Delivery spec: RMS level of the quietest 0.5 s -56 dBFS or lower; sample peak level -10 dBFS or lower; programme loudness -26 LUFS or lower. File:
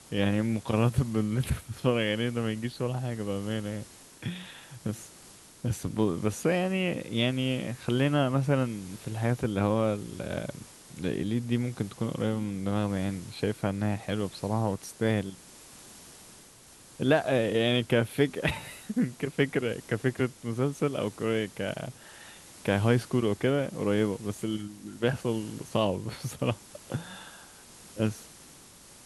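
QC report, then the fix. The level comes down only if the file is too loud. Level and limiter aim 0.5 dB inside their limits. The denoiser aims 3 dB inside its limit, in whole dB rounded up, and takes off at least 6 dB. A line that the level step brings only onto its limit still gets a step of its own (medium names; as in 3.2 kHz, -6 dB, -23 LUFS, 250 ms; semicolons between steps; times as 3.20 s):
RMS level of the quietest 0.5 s -53 dBFS: fail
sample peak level -11.0 dBFS: pass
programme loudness -30.0 LUFS: pass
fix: noise reduction 6 dB, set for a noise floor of -53 dBFS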